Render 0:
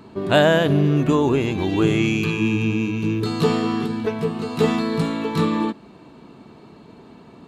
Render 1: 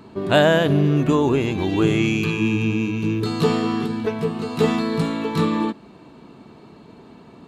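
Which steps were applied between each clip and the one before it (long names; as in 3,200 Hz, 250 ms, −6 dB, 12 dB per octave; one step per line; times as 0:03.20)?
no processing that can be heard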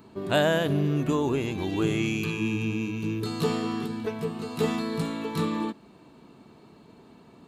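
high-shelf EQ 8,600 Hz +11 dB
level −7.5 dB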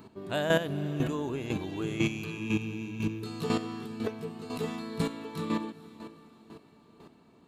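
feedback delay with all-pass diffusion 466 ms, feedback 49%, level −15 dB
square-wave tremolo 2 Hz, depth 65%, duty 15%
level +1 dB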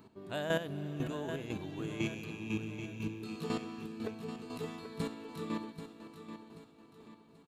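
repeating echo 784 ms, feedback 40%, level −10 dB
level −7 dB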